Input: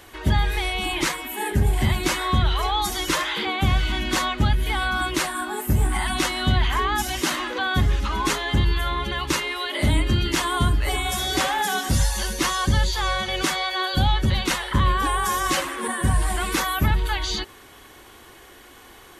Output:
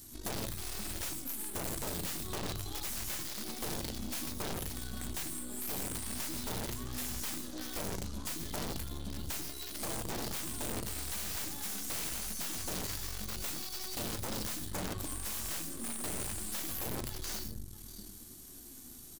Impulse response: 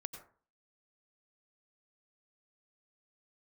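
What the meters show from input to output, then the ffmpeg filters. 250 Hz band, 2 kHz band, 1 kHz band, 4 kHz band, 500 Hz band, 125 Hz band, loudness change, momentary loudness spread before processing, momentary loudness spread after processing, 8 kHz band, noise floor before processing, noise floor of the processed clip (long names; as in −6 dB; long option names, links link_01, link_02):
−14.5 dB, −21.0 dB, −22.0 dB, −16.5 dB, −14.5 dB, −20.5 dB, −14.5 dB, 3 LU, 4 LU, −7.5 dB, −47 dBFS, −50 dBFS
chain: -filter_complex "[0:a]lowshelf=frequency=280:gain=10.5,asplit=2[link_01][link_02];[link_02]adelay=641.4,volume=-16dB,highshelf=frequency=4000:gain=-14.4[link_03];[link_01][link_03]amix=inputs=2:normalize=0,acrossover=split=1700[link_04][link_05];[link_05]aeval=exprs='(mod(15*val(0)+1,2)-1)/15':channel_layout=same[link_06];[link_04][link_06]amix=inputs=2:normalize=0,aexciter=amount=4.2:drive=8:freq=4200,equalizer=frequency=250:width_type=o:width=1:gain=11,equalizer=frequency=500:width_type=o:width=1:gain=-10,equalizer=frequency=1000:width_type=o:width=1:gain=-8,equalizer=frequency=2000:width_type=o:width=1:gain=-9[link_07];[1:a]atrim=start_sample=2205[link_08];[link_07][link_08]afir=irnorm=-1:irlink=0,aeval=exprs='(mod(3.76*val(0)+1,2)-1)/3.76':channel_layout=same,aeval=exprs='0.266*(cos(1*acos(clip(val(0)/0.266,-1,1)))-cos(1*PI/2))+0.0376*(cos(8*acos(clip(val(0)/0.266,-1,1)))-cos(8*PI/2))':channel_layout=same,acompressor=threshold=-29dB:ratio=2.5,flanger=delay=7.9:depth=4.3:regen=75:speed=0.29:shape=triangular,volume=-7dB"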